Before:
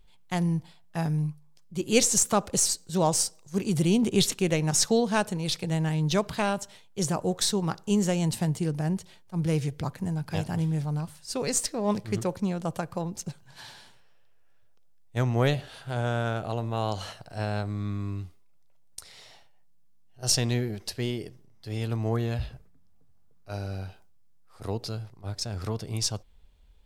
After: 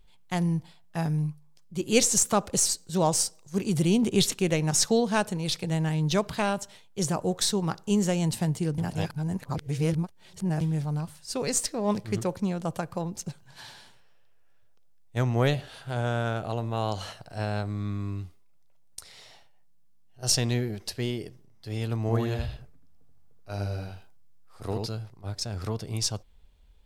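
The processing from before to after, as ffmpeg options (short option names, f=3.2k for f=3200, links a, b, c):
-filter_complex "[0:a]asettb=1/sr,asplit=3[a][b][c];[a]atrim=end=22.014[d];[b]atrim=start=22.01:end=24.88,asetpts=PTS-STARTPTS,afade=t=in:d=0.004:c=qsin,afade=t=out:st=2.866:d=0.004:c=qsin,aecho=1:1:80:0.668,atrim=end_sample=126567[e];[c]atrim=start=24.876[f];[d][e]acrossfade=d=0.004:c1=hsin:c2=qsin[g];[g][f]acrossfade=d=0.004:c1=qsin:c2=hsin,asplit=3[h][i][j];[h]atrim=end=8.782[k];[i]atrim=start=8.778:end=10.612,asetpts=PTS-STARTPTS,areverse[l];[j]atrim=start=10.608[m];[k][l]acrossfade=d=0.004:c1=hsin:c2=hsin[n];[n][m]acrossfade=d=0.004:c1=hsin:c2=hsin"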